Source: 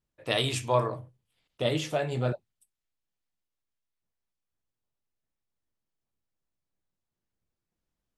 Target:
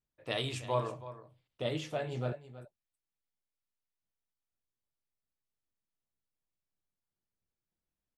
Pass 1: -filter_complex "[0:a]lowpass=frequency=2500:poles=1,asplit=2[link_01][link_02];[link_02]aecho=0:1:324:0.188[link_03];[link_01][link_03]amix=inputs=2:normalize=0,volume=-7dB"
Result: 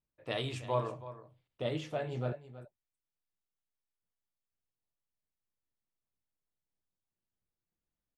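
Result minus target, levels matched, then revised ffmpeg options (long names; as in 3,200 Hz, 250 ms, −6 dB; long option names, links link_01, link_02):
8,000 Hz band −5.0 dB
-filter_complex "[0:a]lowpass=frequency=5700:poles=1,asplit=2[link_01][link_02];[link_02]aecho=0:1:324:0.188[link_03];[link_01][link_03]amix=inputs=2:normalize=0,volume=-7dB"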